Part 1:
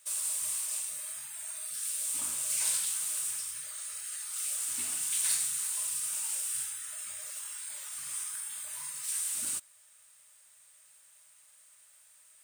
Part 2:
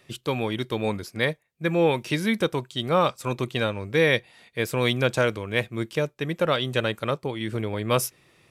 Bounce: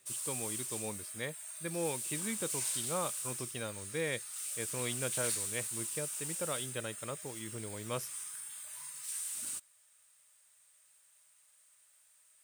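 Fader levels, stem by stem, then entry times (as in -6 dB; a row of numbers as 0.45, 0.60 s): -6.0, -15.5 dB; 0.00, 0.00 s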